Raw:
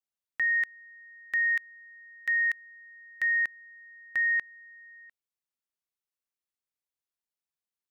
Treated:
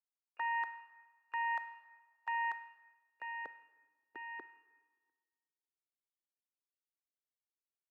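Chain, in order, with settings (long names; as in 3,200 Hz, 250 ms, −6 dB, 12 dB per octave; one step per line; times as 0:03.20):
phaser with its sweep stopped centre 590 Hz, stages 6
pitch-shifted copies added −12 semitones −9 dB, +5 semitones −14 dB, +7 semitones −13 dB
noise gate −47 dBFS, range −14 dB
on a send at −16 dB: tilt shelving filter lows −8 dB, about 650 Hz + convolution reverb RT60 1.6 s, pre-delay 12 ms
on the sum: band-pass filter sweep 820 Hz → 360 Hz, 0:02.43–0:03.87
level +10 dB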